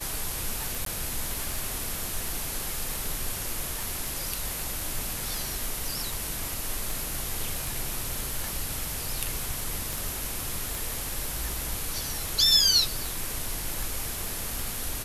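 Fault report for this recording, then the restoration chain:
tick 78 rpm
0.85–0.86 gap 13 ms
9.93 pop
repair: de-click; interpolate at 0.85, 13 ms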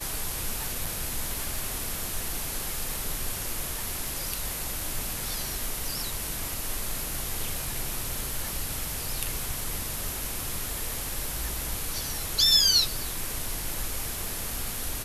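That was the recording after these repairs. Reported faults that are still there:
none

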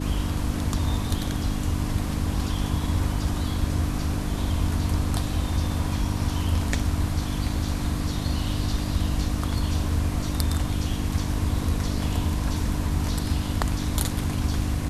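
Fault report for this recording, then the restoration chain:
hum 50 Hz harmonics 6 -30 dBFS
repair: de-hum 50 Hz, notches 6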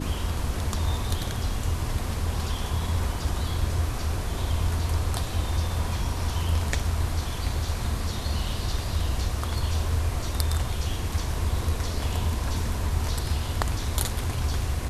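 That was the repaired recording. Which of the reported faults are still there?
none

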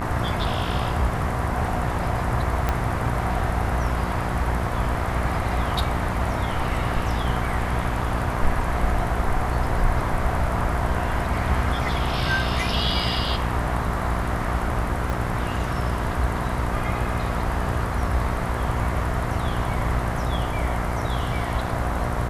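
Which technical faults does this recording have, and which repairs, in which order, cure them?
buzz 60 Hz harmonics 35 -28 dBFS
2.69 pop -9 dBFS
15.1 pop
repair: de-click; de-hum 60 Hz, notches 35

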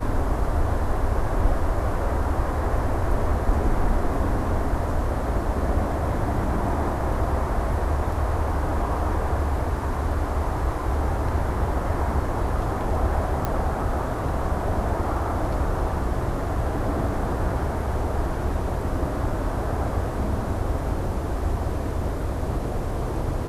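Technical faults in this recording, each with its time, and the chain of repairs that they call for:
13.45 pop -12 dBFS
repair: de-click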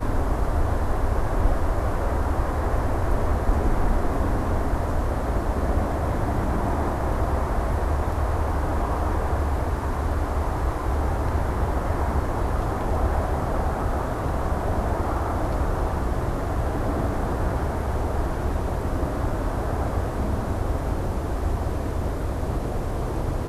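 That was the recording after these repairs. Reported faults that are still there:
none

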